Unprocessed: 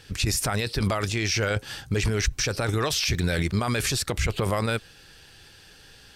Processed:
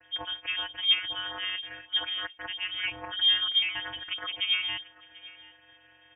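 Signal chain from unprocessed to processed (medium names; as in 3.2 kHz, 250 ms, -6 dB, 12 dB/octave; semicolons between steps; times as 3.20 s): bass shelf 480 Hz -10.5 dB; comb 1.1 ms, depth 75%; vocoder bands 32, saw 193 Hz; distance through air 240 m; delay 739 ms -20 dB; frequency inversion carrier 3.4 kHz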